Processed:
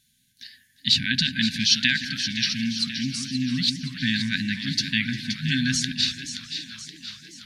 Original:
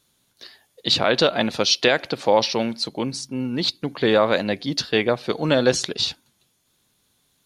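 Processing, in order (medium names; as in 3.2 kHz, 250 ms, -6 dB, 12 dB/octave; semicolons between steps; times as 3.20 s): two-band feedback delay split 1.7 kHz, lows 167 ms, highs 524 ms, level -9 dB; FFT band-reject 270–1500 Hz; modulated delay 349 ms, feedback 75%, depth 94 cents, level -19.5 dB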